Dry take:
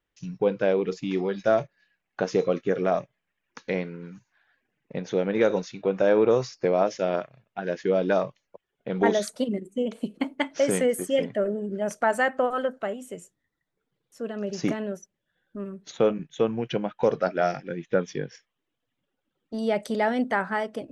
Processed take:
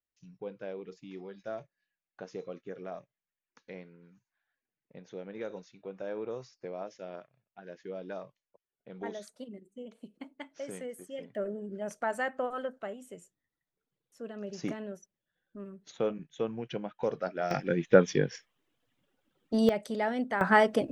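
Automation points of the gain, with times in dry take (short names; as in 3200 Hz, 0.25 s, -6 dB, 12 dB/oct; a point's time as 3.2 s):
-17.5 dB
from 11.35 s -9 dB
from 17.51 s +4 dB
from 19.69 s -6.5 dB
from 20.41 s +6 dB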